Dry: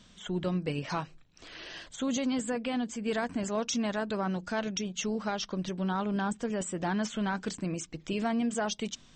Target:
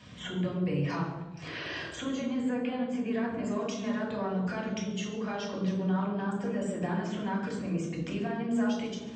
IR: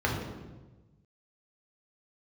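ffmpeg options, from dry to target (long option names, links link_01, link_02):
-filter_complex "[0:a]asettb=1/sr,asplit=3[link_01][link_02][link_03];[link_01]atrim=end=2.234[link_04];[link_02]atrim=start=2.23:end=3.39,asetpts=PTS-STARTPTS,afade=type=in:duration=0.004:curve=qsin,afade=type=out:start_time=1.156:duration=0.004:curve=qsin,bass=frequency=250:gain=0,treble=frequency=4000:gain=-7[link_05];[link_03]atrim=start=3.386[link_06];[link_04][link_05]acrossfade=duration=0.004:curve1=hsin:curve2=qsin[link_07];[link_07][link_06]acrossfade=duration=0.004:curve1=qsin:curve2=hsin,acompressor=threshold=-41dB:ratio=6,lowshelf=frequency=310:gain=-7.5[link_08];[1:a]atrim=start_sample=2205,asetrate=52920,aresample=44100[link_09];[link_08][link_09]afir=irnorm=-1:irlink=0"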